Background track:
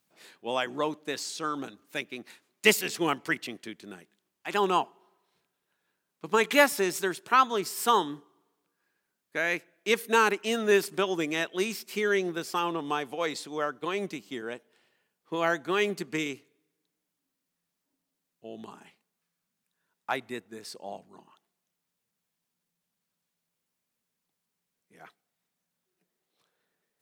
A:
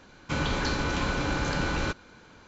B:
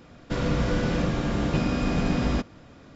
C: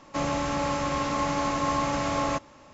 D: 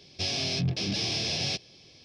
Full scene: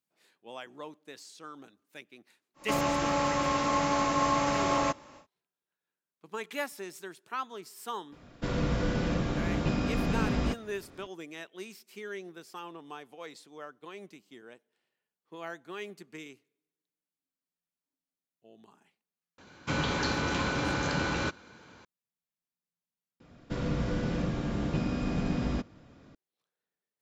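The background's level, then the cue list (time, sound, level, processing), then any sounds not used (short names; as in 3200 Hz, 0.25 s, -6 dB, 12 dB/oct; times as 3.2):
background track -14 dB
2.54 add C, fades 0.10 s + low shelf 130 Hz -6 dB
8.12 add B -4.5 dB
19.38 add A -1 dB + HPF 84 Hz
23.2 replace with B -8.5 dB + bell 170 Hz +3.5 dB 2.7 oct
not used: D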